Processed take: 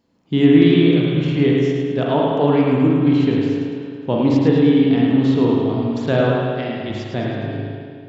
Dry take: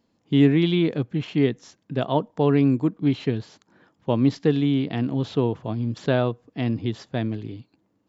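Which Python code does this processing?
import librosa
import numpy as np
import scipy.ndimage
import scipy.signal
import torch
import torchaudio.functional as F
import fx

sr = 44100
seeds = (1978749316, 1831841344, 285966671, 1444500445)

p1 = fx.low_shelf(x, sr, hz=350.0, db=-11.0, at=(6.21, 6.9))
p2 = p1 + fx.echo_feedback(p1, sr, ms=107, feedback_pct=48, wet_db=-6.5, dry=0)
p3 = fx.rev_spring(p2, sr, rt60_s=2.1, pass_ms=(38, 48), chirp_ms=60, drr_db=-2.5)
y = F.gain(torch.from_numpy(p3), 1.5).numpy()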